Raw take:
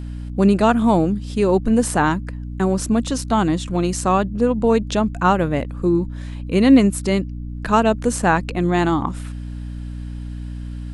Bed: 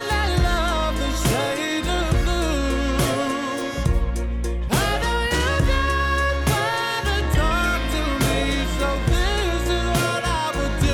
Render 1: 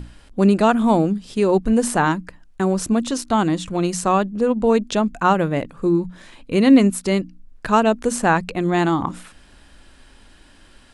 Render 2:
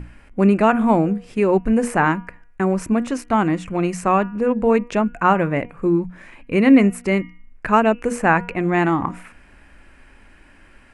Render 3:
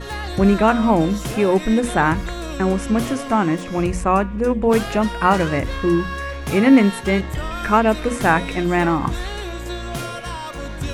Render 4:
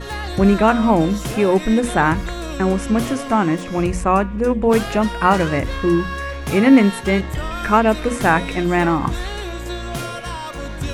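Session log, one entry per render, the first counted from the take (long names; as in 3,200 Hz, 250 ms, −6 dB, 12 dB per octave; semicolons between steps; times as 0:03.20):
mains-hum notches 60/120/180/240/300 Hz
high shelf with overshoot 2,900 Hz −7 dB, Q 3; hum removal 239.5 Hz, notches 13
mix in bed −7 dB
level +1 dB; brickwall limiter −1 dBFS, peak gain reduction 1 dB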